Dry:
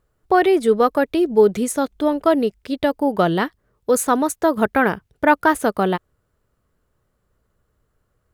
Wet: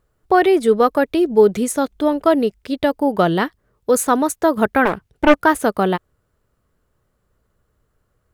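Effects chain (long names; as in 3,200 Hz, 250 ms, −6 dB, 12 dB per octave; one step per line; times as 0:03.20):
0:04.85–0:05.37: highs frequency-modulated by the lows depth 0.55 ms
level +1.5 dB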